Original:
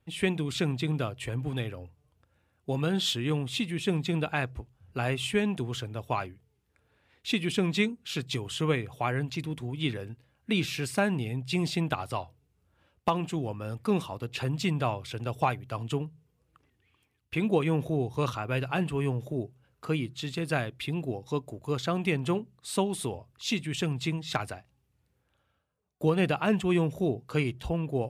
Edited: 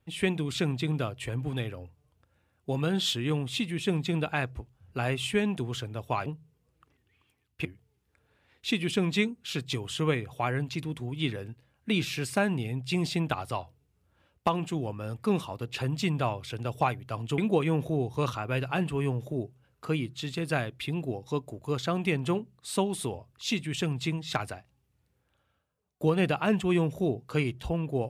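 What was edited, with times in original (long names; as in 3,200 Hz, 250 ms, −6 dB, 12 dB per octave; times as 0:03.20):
0:15.99–0:17.38: move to 0:06.26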